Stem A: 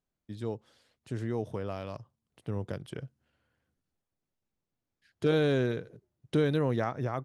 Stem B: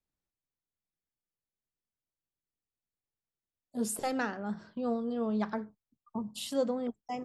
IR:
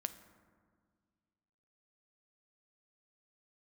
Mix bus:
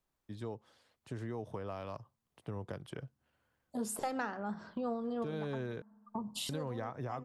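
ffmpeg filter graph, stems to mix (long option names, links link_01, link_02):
-filter_complex "[0:a]bandreject=frequency=1400:width=26,acrossover=split=270[link_01][link_02];[link_02]acompressor=threshold=-31dB:ratio=4[link_03];[link_01][link_03]amix=inputs=2:normalize=0,volume=-4dB,asplit=3[link_04][link_05][link_06];[link_04]atrim=end=5.82,asetpts=PTS-STARTPTS,afade=type=out:start_time=5.816:duration=0.004:curve=hsin[link_07];[link_05]atrim=start=5.82:end=6.49,asetpts=PTS-STARTPTS,volume=0[link_08];[link_06]atrim=start=6.49,asetpts=PTS-STARTPTS,afade=type=in:duration=0.004:curve=hsin[link_09];[link_07][link_08][link_09]concat=n=3:v=0:a=1,asplit=2[link_10][link_11];[1:a]volume=2.5dB,asplit=2[link_12][link_13];[link_13]volume=-21dB[link_14];[link_11]apad=whole_len=319591[link_15];[link_12][link_15]sidechaincompress=threshold=-46dB:ratio=8:attack=16:release=512[link_16];[2:a]atrim=start_sample=2205[link_17];[link_14][link_17]afir=irnorm=-1:irlink=0[link_18];[link_10][link_16][link_18]amix=inputs=3:normalize=0,equalizer=frequency=1000:width_type=o:width=1.3:gain=6.5,acompressor=threshold=-38dB:ratio=2.5"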